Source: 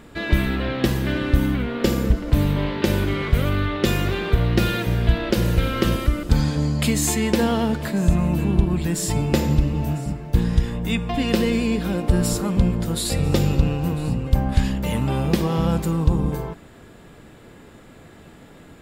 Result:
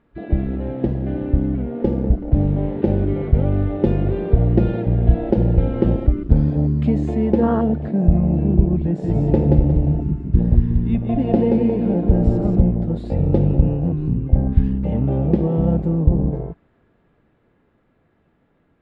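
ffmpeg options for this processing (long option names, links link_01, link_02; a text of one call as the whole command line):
ffmpeg -i in.wav -filter_complex "[0:a]asettb=1/sr,asplit=3[link_01][link_02][link_03];[link_01]atrim=end=8.864[link_04];[link_02]atrim=start=8.86:end=12.61,asetpts=PTS-STARTPTS,afade=type=in:duration=0.004:curve=qsin,afade=type=out:start_time=3.746:duration=0.004:curve=qsin,aecho=1:1:179|358|537|716|895:0.668|0.234|0.0819|0.0287|0.01,atrim=end_sample=165375[link_05];[link_03]atrim=start=12.606[link_06];[link_04][link_05]acrossfade=duration=0.004:curve1=hsin:curve2=qsin[link_07];[link_07][link_06]acrossfade=duration=0.004:curve1=qsin:curve2=hsin,afwtdn=0.0891,lowpass=2200,dynaudnorm=framelen=370:gausssize=13:maxgain=6dB" out.wav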